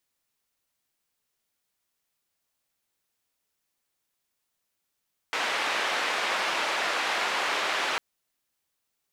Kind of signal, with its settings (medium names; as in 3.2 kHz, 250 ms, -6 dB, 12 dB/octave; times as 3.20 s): noise band 520–2400 Hz, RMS -28 dBFS 2.65 s